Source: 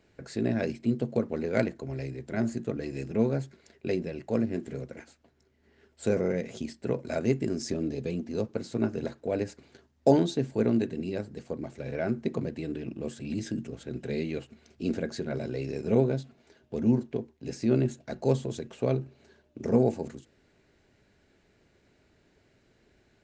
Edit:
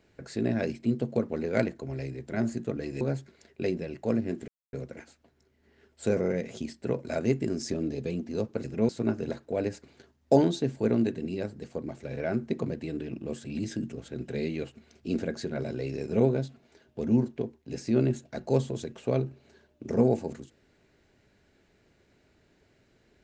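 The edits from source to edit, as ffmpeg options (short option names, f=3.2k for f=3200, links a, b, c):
-filter_complex "[0:a]asplit=5[a][b][c][d][e];[a]atrim=end=3.012[f];[b]atrim=start=3.258:end=4.73,asetpts=PTS-STARTPTS,afade=t=out:st=1.468:d=0.004:c=hsin,apad=pad_dur=0.25[g];[c]atrim=start=4.73:end=8.642,asetpts=PTS-STARTPTS,afade=t=in:d=0.004:c=hsin[h];[d]atrim=start=3.008:end=3.262[i];[e]atrim=start=8.638[j];[g][h]concat=n=2:v=0:a=1[k];[f][k]acrossfade=d=0.004:c1=hsin:c2=hsin[l];[l][i]acrossfade=d=0.004:c1=hsin:c2=hsin[m];[m][j]acrossfade=d=0.004:c1=hsin:c2=hsin"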